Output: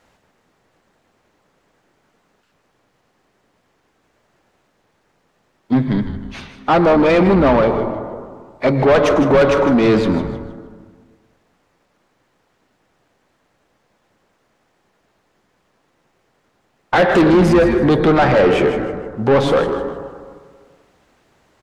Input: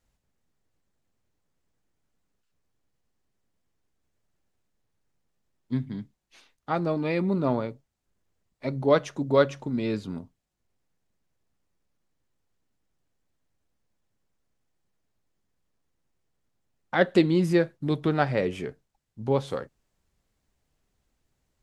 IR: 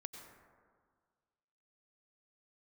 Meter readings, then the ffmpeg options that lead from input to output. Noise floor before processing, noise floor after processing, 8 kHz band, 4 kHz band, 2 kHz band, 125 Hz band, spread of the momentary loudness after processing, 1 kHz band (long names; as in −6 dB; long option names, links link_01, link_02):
−78 dBFS, −64 dBFS, can't be measured, +11.5 dB, +12.5 dB, +10.0 dB, 15 LU, +14.0 dB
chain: -filter_complex "[0:a]asplit=2[link_01][link_02];[1:a]atrim=start_sample=2205[link_03];[link_02][link_03]afir=irnorm=-1:irlink=0,volume=-3dB[link_04];[link_01][link_04]amix=inputs=2:normalize=0,asplit=2[link_05][link_06];[link_06]highpass=frequency=720:poles=1,volume=30dB,asoftclip=type=tanh:threshold=-2.5dB[link_07];[link_05][link_07]amix=inputs=2:normalize=0,lowpass=frequency=1200:poles=1,volume=-6dB,asplit=5[link_08][link_09][link_10][link_11][link_12];[link_09]adelay=156,afreqshift=-120,volume=-11dB[link_13];[link_10]adelay=312,afreqshift=-240,volume=-20.4dB[link_14];[link_11]adelay=468,afreqshift=-360,volume=-29.7dB[link_15];[link_12]adelay=624,afreqshift=-480,volume=-39.1dB[link_16];[link_08][link_13][link_14][link_15][link_16]amix=inputs=5:normalize=0,acontrast=61,volume=-4.5dB"